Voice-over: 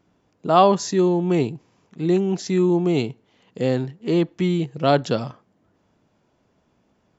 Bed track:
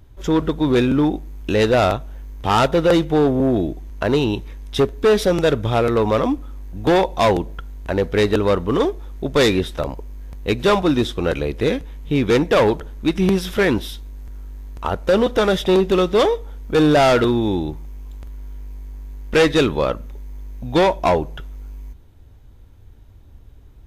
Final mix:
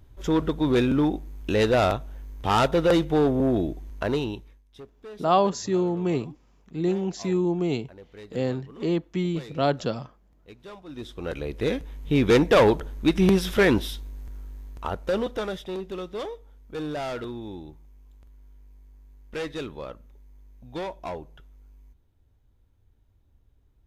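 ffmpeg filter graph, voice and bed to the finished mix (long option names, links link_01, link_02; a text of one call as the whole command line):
ffmpeg -i stem1.wav -i stem2.wav -filter_complex "[0:a]adelay=4750,volume=-5.5dB[link_01];[1:a]volume=20.5dB,afade=type=out:start_time=3.91:duration=0.72:silence=0.0749894,afade=type=in:start_time=10.86:duration=1.42:silence=0.0530884,afade=type=out:start_time=13.86:duration=1.82:silence=0.16788[link_02];[link_01][link_02]amix=inputs=2:normalize=0" out.wav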